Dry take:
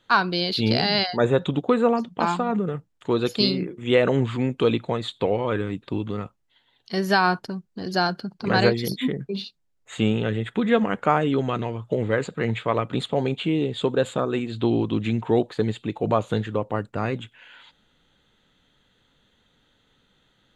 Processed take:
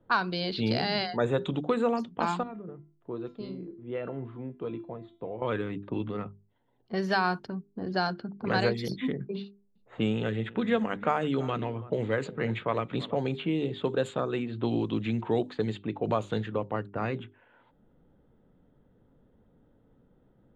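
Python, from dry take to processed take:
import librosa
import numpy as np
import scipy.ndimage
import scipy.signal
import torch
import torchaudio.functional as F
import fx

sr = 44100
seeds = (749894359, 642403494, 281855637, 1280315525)

y = fx.comb_fb(x, sr, f0_hz=340.0, decay_s=0.45, harmonics='all', damping=0.0, mix_pct=80, at=(2.43, 5.42))
y = fx.echo_single(y, sr, ms=333, db=-19.5, at=(9.42, 13.45))
y = fx.env_lowpass(y, sr, base_hz=520.0, full_db=-17.0)
y = fx.hum_notches(y, sr, base_hz=50, count=8)
y = fx.band_squash(y, sr, depth_pct=40)
y = F.gain(torch.from_numpy(y), -5.5).numpy()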